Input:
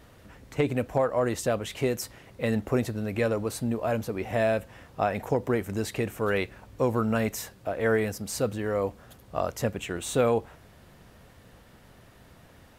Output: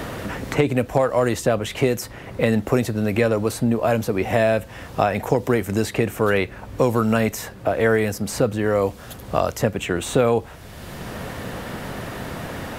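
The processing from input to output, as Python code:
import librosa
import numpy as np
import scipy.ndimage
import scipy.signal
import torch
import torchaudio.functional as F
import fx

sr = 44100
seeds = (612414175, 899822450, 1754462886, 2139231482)

y = fx.band_squash(x, sr, depth_pct=70)
y = y * 10.0 ** (7.0 / 20.0)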